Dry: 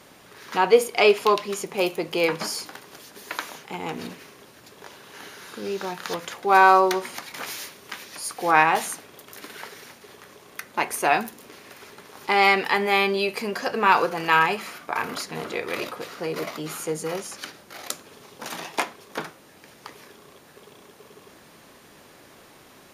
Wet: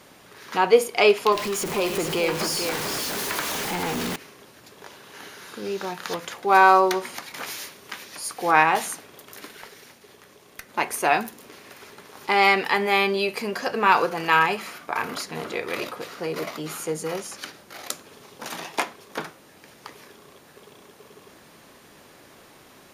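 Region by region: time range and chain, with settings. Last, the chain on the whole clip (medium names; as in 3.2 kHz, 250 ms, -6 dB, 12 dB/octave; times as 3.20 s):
1.32–4.16 s: jump at every zero crossing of -25 dBFS + compression 1.5:1, threshold -27 dBFS + delay 442 ms -6.5 dB
9.49–10.69 s: peaking EQ 1.2 kHz -2.5 dB 1.5 oct + valve stage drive 21 dB, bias 0.6 + tape noise reduction on one side only encoder only
whole clip: none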